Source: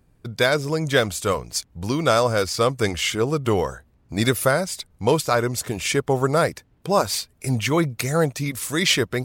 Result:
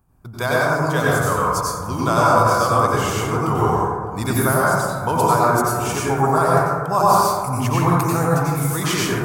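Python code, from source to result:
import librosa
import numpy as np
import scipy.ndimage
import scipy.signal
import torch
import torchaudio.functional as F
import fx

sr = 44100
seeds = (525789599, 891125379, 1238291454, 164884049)

y = fx.graphic_eq(x, sr, hz=(250, 500, 1000, 2000, 4000, 8000), db=(-6, -11, 6, -11, -11, -4))
y = np.clip(y, -10.0 ** (-10.5 / 20.0), 10.0 ** (-10.5 / 20.0))
y = fx.low_shelf(y, sr, hz=150.0, db=-7.0)
y = y + 10.0 ** (-23.5 / 20.0) * np.pad(y, (int(606 * sr / 1000.0), 0))[:len(y)]
y = fx.rev_plate(y, sr, seeds[0], rt60_s=1.7, hf_ratio=0.3, predelay_ms=80, drr_db=-6.5)
y = F.gain(torch.from_numpy(y), 3.0).numpy()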